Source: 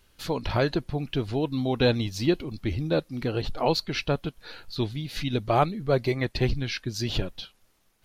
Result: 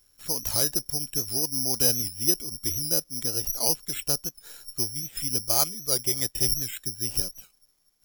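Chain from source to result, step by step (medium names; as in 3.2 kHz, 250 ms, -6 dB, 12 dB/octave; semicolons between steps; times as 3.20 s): 5.54–5.99 s: tilt EQ +1.5 dB/octave; careless resampling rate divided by 8×, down filtered, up zero stuff; warped record 78 rpm, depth 100 cents; trim -9.5 dB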